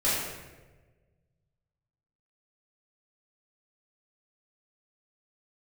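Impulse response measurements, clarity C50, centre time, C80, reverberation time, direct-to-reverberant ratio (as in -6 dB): -1.0 dB, 86 ms, 2.0 dB, 1.3 s, -11.5 dB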